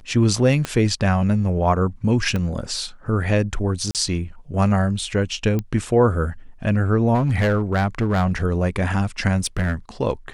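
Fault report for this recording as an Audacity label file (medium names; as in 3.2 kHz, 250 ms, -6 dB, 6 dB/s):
0.650000	0.650000	pop -10 dBFS
2.360000	2.360000	pop -13 dBFS
3.910000	3.950000	dropout 38 ms
5.590000	5.590000	pop -13 dBFS
7.140000	8.360000	clipped -14.5 dBFS
9.390000	9.740000	clipped -17 dBFS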